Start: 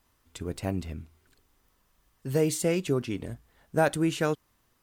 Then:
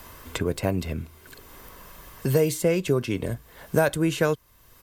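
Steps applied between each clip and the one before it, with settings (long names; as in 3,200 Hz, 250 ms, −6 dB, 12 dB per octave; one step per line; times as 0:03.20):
parametric band 13,000 Hz +9 dB 0.24 octaves
comb filter 1.9 ms, depth 31%
multiband upward and downward compressor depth 70%
level +4 dB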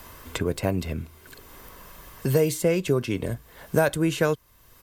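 no processing that can be heard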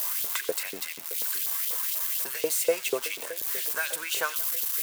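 spike at every zero crossing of −20 dBFS
auto-filter high-pass saw up 4.1 Hz 460–3,800 Hz
echo with a time of its own for lows and highs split 920 Hz, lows 619 ms, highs 89 ms, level −15.5 dB
level −4 dB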